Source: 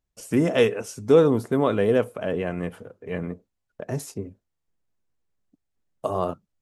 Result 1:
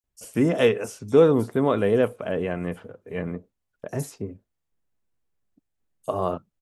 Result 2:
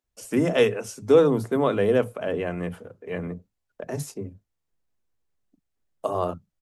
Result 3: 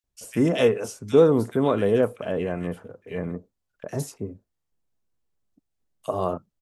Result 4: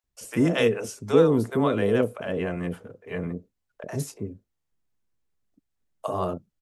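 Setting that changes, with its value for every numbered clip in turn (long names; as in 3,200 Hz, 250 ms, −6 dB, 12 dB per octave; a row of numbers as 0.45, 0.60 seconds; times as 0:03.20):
multiband delay without the direct sound, split: 5,200, 190, 1,900, 580 Hertz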